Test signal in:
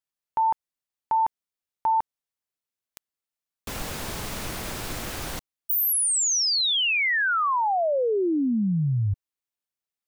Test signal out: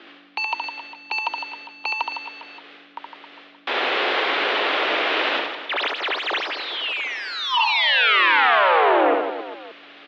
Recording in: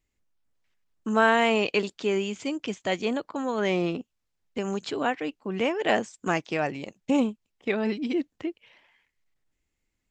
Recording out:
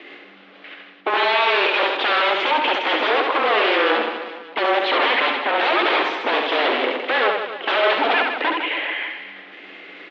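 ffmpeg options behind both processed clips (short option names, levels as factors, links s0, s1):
-filter_complex "[0:a]bandreject=f=960:w=7.3,acontrast=21,alimiter=limit=0.178:level=0:latency=1:release=27,areverse,acompressor=mode=upward:threshold=0.0112:ratio=2.5:attack=0.48:release=138:knee=2.83:detection=peak,areverse,aeval=exprs='0.178*sin(PI/2*5.01*val(0)/0.178)':c=same,afreqshift=-110,aeval=exprs='val(0)+0.0112*(sin(2*PI*50*n/s)+sin(2*PI*2*50*n/s)/2+sin(2*PI*3*50*n/s)/3+sin(2*PI*4*50*n/s)/4+sin(2*PI*5*50*n/s)/5)':c=same,asoftclip=type=hard:threshold=0.0794,asplit=2[s0][s1];[s1]aecho=0:1:70|157.5|266.9|403.6|574.5:0.631|0.398|0.251|0.158|0.1[s2];[s0][s2]amix=inputs=2:normalize=0,highpass=f=250:t=q:w=0.5412,highpass=f=250:t=q:w=1.307,lowpass=f=3400:t=q:w=0.5176,lowpass=f=3400:t=q:w=0.7071,lowpass=f=3400:t=q:w=1.932,afreqshift=86,volume=1.88"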